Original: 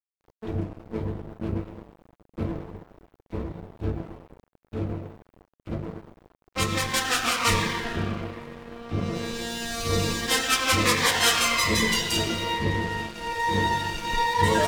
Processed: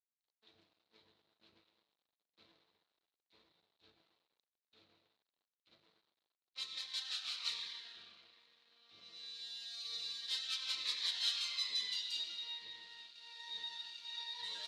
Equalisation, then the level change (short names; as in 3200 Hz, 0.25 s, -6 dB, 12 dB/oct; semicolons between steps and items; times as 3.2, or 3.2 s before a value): band-pass 4000 Hz, Q 6.6; -5.0 dB